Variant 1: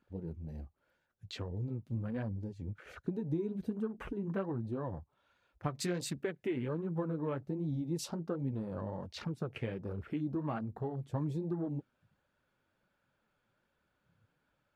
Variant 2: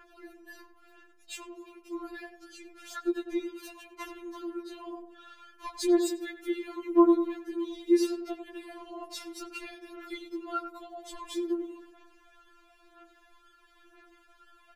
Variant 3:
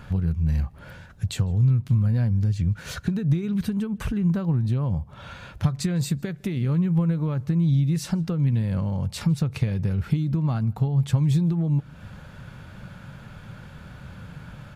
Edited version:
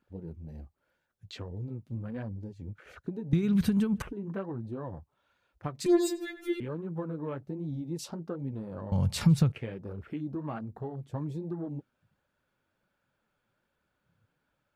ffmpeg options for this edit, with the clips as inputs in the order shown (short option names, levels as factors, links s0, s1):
-filter_complex "[2:a]asplit=2[s0][s1];[0:a]asplit=4[s2][s3][s4][s5];[s2]atrim=end=3.332[s6];[s0]atrim=start=3.328:end=4.022[s7];[s3]atrim=start=4.018:end=5.862[s8];[1:a]atrim=start=5.858:end=6.602[s9];[s4]atrim=start=6.598:end=8.922[s10];[s1]atrim=start=8.918:end=9.522[s11];[s5]atrim=start=9.518[s12];[s6][s7]acrossfade=d=0.004:c1=hsin:c2=hsin[s13];[s13][s8]acrossfade=d=0.004:c1=hsin:c2=hsin[s14];[s14][s9]acrossfade=d=0.004:c1=hsin:c2=hsin[s15];[s15][s10]acrossfade=d=0.004:c1=hsin:c2=hsin[s16];[s16][s11]acrossfade=d=0.004:c1=hsin:c2=hsin[s17];[s17][s12]acrossfade=d=0.004:c1=hsin:c2=hsin"